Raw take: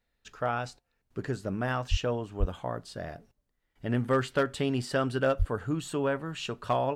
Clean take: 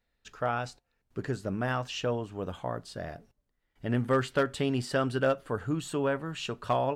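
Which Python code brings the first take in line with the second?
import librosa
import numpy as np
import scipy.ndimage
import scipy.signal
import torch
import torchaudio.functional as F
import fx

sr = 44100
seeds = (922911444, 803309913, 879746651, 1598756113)

y = fx.fix_deplosive(x, sr, at_s=(1.9, 2.39, 5.38))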